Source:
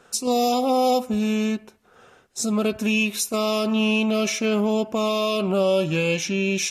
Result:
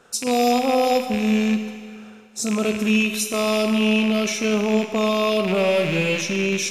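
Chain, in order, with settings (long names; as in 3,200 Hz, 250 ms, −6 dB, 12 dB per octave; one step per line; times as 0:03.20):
loose part that buzzes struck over −41 dBFS, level −18 dBFS
four-comb reverb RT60 2.1 s, combs from 33 ms, DRR 7 dB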